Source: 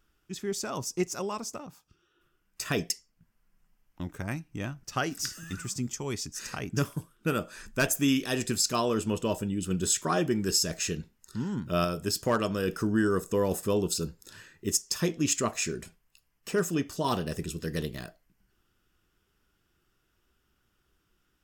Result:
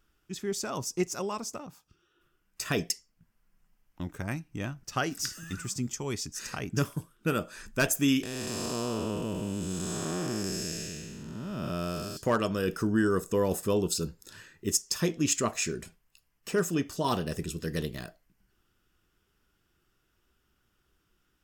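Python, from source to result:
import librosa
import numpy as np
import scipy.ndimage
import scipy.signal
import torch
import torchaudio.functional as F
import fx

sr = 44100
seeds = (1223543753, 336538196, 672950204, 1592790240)

y = fx.spec_blur(x, sr, span_ms=471.0, at=(8.23, 12.17))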